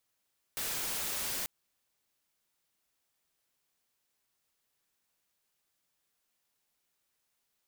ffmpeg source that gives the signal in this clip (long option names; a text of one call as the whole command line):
ffmpeg -f lavfi -i "anoisesrc=color=white:amplitude=0.0291:duration=0.89:sample_rate=44100:seed=1" out.wav